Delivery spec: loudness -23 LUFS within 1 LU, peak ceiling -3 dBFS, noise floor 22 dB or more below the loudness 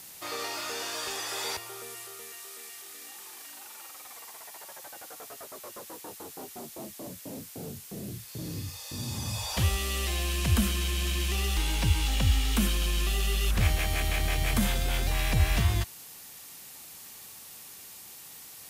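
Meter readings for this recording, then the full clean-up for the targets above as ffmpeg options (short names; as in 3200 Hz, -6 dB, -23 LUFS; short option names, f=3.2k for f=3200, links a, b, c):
noise floor -47 dBFS; noise floor target -52 dBFS; loudness -30.0 LUFS; peak -12.0 dBFS; loudness target -23.0 LUFS
-> -af "afftdn=nr=6:nf=-47"
-af "volume=7dB"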